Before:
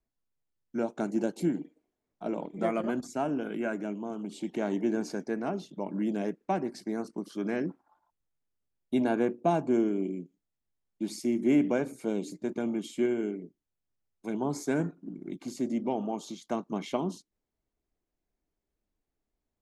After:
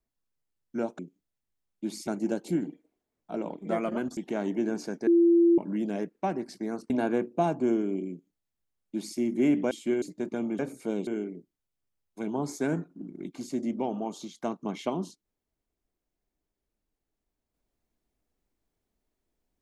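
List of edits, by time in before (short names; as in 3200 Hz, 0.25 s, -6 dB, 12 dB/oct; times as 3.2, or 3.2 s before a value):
3.09–4.43 cut
5.33–5.84 bleep 340 Hz -16.5 dBFS
7.16–8.97 cut
10.17–11.25 copy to 0.99
11.78–12.26 swap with 12.83–13.14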